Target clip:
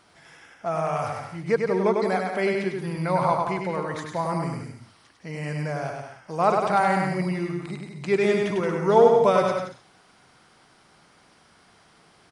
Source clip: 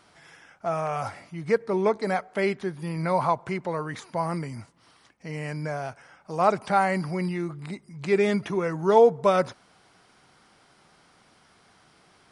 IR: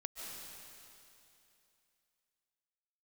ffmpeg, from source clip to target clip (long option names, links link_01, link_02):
-af "aecho=1:1:100|175|231.2|273.4|305.1:0.631|0.398|0.251|0.158|0.1"